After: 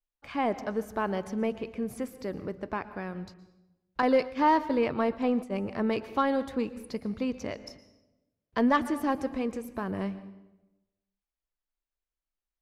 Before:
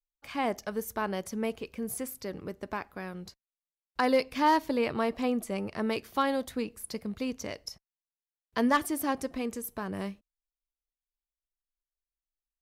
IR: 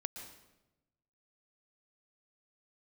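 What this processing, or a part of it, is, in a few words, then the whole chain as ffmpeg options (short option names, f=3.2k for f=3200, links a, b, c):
saturated reverb return: -filter_complex "[0:a]aemphasis=mode=reproduction:type=75fm,asplit=2[a][b];[1:a]atrim=start_sample=2205[c];[b][c]afir=irnorm=-1:irlink=0,asoftclip=type=tanh:threshold=-24.5dB,volume=-3dB[d];[a][d]amix=inputs=2:normalize=0,asettb=1/sr,asplit=3[e][f][g];[e]atrim=end=4.024[h];[f]atrim=start=4.02:end=5.68,asetpts=PTS-STARTPTS,afade=t=in:d=0.004:c=qsin,afade=t=out:st=1.656:d=0.004:c=qsin,agate=range=-33dB:threshold=-26dB:ratio=3:detection=peak[i];[g]atrim=start=5.676[j];[h][i]acrossfade=d=0.004:c1=hsin:c2=qsin[k];[k][j]acrossfade=d=0.004:c1=qsin:c2=hsin,volume=-1.5dB"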